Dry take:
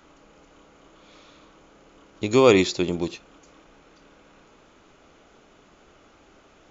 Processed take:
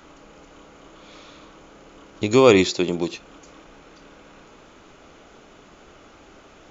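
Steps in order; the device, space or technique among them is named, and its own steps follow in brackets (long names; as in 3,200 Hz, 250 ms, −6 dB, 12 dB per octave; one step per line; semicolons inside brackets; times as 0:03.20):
0:02.70–0:03.14: Bessel high-pass filter 160 Hz
parallel compression (in parallel at −3 dB: downward compressor, threshold −34 dBFS, peak gain reduction 21.5 dB)
on the sum: level +1.5 dB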